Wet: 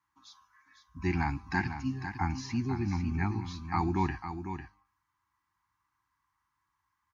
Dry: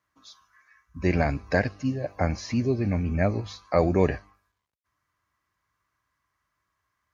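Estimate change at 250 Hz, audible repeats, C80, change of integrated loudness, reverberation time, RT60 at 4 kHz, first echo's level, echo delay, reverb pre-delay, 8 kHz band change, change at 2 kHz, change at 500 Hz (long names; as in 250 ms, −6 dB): −5.5 dB, 1, no reverb audible, −7.0 dB, no reverb audible, no reverb audible, −9.0 dB, 500 ms, no reverb audible, can't be measured, −4.5 dB, −16.0 dB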